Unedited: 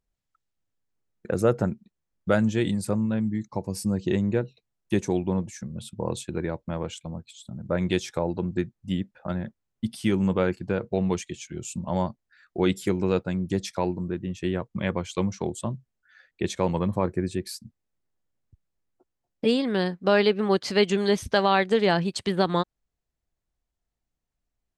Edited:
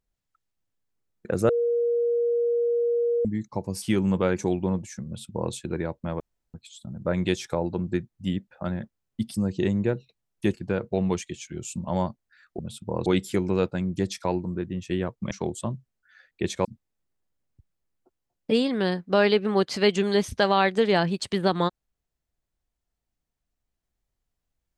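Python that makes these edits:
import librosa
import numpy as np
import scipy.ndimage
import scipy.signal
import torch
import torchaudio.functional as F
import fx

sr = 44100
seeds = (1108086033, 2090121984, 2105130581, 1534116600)

y = fx.edit(x, sr, fx.bleep(start_s=1.49, length_s=1.76, hz=473.0, db=-20.5),
    fx.swap(start_s=3.82, length_s=1.2, other_s=9.98, other_length_s=0.56),
    fx.duplicate(start_s=5.7, length_s=0.47, to_s=12.59),
    fx.room_tone_fill(start_s=6.84, length_s=0.34),
    fx.cut(start_s=14.84, length_s=0.47),
    fx.cut(start_s=16.65, length_s=0.94), tone=tone)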